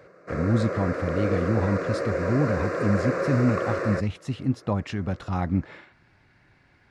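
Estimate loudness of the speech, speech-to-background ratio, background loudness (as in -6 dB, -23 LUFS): -27.0 LUFS, 1.5 dB, -28.5 LUFS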